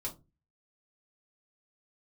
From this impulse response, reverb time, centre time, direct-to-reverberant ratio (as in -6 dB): 0.25 s, 13 ms, -3.5 dB